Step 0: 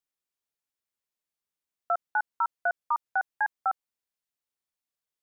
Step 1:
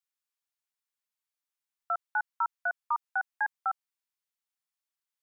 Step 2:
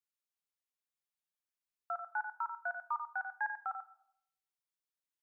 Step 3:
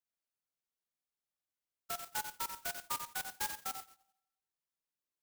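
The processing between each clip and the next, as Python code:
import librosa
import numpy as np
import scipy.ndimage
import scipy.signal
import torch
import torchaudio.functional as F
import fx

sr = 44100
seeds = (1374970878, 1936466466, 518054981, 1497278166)

y1 = scipy.signal.sosfilt(scipy.signal.butter(4, 810.0, 'highpass', fs=sr, output='sos'), x)
y1 = F.gain(torch.from_numpy(y1), -1.5).numpy()
y2 = y1 + 10.0 ** (-8.5 / 20.0) * np.pad(y1, (int(91 * sr / 1000.0), 0))[:len(y1)]
y2 = fx.room_shoebox(y2, sr, seeds[0], volume_m3=1900.0, walls='furnished', distance_m=0.89)
y2 = F.gain(torch.from_numpy(y2), -7.0).numpy()
y3 = fx.spec_expand(y2, sr, power=1.6)
y3 = fx.clock_jitter(y3, sr, seeds[1], jitter_ms=0.13)
y3 = F.gain(torch.from_numpy(y3), -1.5).numpy()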